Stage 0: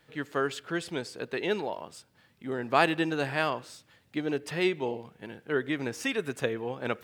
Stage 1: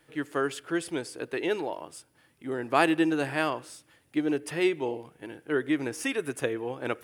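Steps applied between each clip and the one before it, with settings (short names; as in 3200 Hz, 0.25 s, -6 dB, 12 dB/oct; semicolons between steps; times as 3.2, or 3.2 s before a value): thirty-one-band EQ 100 Hz -5 dB, 200 Hz -9 dB, 315 Hz +7 dB, 4000 Hz -5 dB, 10000 Hz +12 dB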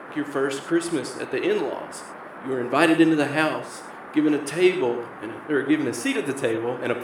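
rotary speaker horn 5.5 Hz; band noise 180–1600 Hz -47 dBFS; non-linear reverb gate 0.14 s flat, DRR 7.5 dB; gain +7 dB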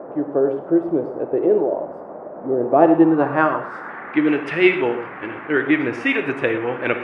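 low-pass sweep 610 Hz -> 2300 Hz, 2.59–4.24; gain +2.5 dB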